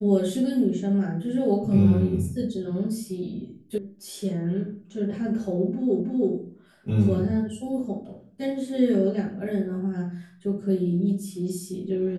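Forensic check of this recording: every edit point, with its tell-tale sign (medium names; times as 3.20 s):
3.78 s: sound stops dead
6.00 s: repeat of the last 0.32 s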